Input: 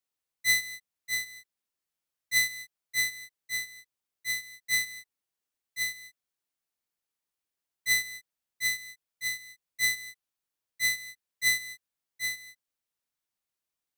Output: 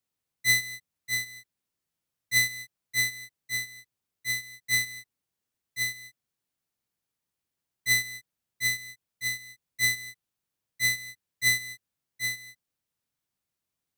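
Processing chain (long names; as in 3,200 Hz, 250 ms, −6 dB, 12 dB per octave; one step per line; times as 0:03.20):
parametric band 120 Hz +10.5 dB 2.5 octaves
level +1.5 dB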